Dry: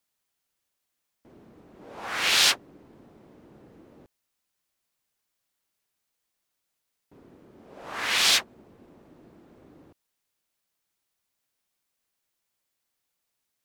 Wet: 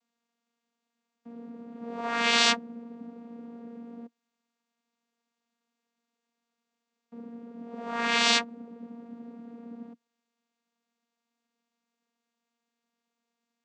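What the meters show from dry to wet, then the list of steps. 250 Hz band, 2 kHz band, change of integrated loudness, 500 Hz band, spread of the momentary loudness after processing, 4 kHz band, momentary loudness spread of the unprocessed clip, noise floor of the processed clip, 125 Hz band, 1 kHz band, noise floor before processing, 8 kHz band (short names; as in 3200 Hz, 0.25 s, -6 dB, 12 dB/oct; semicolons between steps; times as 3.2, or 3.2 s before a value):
+12.0 dB, -0.5 dB, -3.0 dB, +6.0 dB, 23 LU, -3.5 dB, 17 LU, under -85 dBFS, -0.5 dB, +4.0 dB, -81 dBFS, -6.0 dB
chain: vocoder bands 16, saw 234 Hz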